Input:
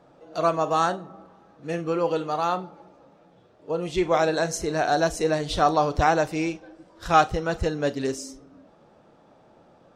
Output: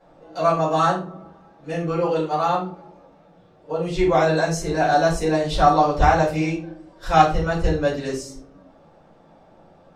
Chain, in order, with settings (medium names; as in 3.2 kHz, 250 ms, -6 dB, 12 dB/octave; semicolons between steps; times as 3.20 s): simulated room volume 180 m³, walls furnished, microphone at 4.9 m; trim -7.5 dB